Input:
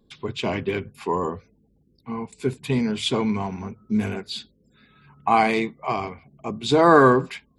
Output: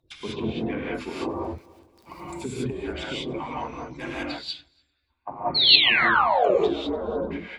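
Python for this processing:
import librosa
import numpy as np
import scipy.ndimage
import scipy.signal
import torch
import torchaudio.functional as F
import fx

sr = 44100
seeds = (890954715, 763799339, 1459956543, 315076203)

p1 = fx.hpss_only(x, sr, part='percussive')
p2 = fx.env_lowpass_down(p1, sr, base_hz=310.0, full_db=-24.0)
p3 = fx.dmg_crackle(p2, sr, seeds[0], per_s=14.0, level_db=-42.0, at=(1.13, 2.49), fade=0.02)
p4 = fx.over_compress(p3, sr, threshold_db=-33.0, ratio=-1.0)
p5 = p3 + (p4 * 10.0 ** (1.0 / 20.0))
p6 = fx.spec_paint(p5, sr, seeds[1], shape='fall', start_s=5.54, length_s=1.01, low_hz=340.0, high_hz=4500.0, level_db=-19.0)
p7 = fx.echo_feedback(p6, sr, ms=294, feedback_pct=40, wet_db=-22.0)
p8 = fx.rev_gated(p7, sr, seeds[2], gate_ms=220, shape='rising', drr_db=-5.5)
p9 = fx.band_widen(p8, sr, depth_pct=100, at=(4.23, 5.76))
y = p9 * 10.0 ** (-7.5 / 20.0)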